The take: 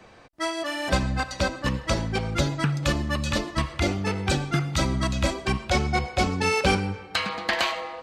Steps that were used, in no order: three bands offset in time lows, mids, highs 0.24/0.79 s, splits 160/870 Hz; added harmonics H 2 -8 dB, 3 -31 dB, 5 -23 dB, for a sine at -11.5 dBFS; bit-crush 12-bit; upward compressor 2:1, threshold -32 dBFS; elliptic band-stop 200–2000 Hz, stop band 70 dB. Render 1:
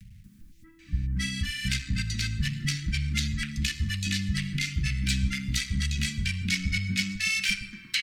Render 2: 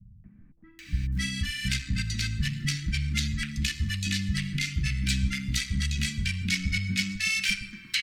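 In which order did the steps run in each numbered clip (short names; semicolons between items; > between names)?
added harmonics > three bands offset in time > bit-crush > upward compressor > elliptic band-stop; added harmonics > elliptic band-stop > bit-crush > upward compressor > three bands offset in time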